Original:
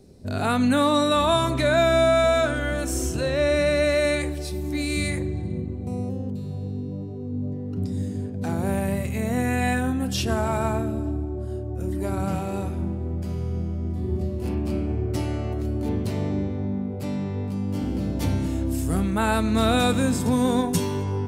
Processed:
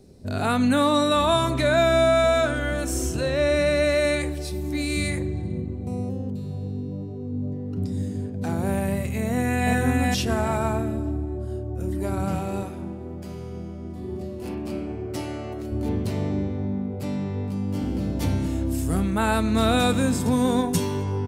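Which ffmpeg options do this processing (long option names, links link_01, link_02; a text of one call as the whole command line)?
ffmpeg -i in.wav -filter_complex "[0:a]asplit=2[link_01][link_02];[link_02]afade=type=in:start_time=9.25:duration=0.01,afade=type=out:start_time=9.73:duration=0.01,aecho=0:1:410|820|1230|1640:0.841395|0.210349|0.0525872|0.0131468[link_03];[link_01][link_03]amix=inputs=2:normalize=0,asettb=1/sr,asplit=3[link_04][link_05][link_06];[link_04]atrim=end=12.634[link_07];[link_05]atrim=start=12.63:end=15.72,asetpts=PTS-STARTPTS,afade=type=in:duration=0.004:curve=qsin,afade=type=out:start_time=3.086:duration=0.004:curve=qsin,highpass=frequency=270:poles=1[link_08];[link_06]atrim=start=15.716[link_09];[link_07][link_08]acrossfade=duration=0.004:curve1=hsin:curve2=qsin[link_10];[link_10][link_09]acrossfade=duration=0.004:curve1=qsin:curve2=hsin" out.wav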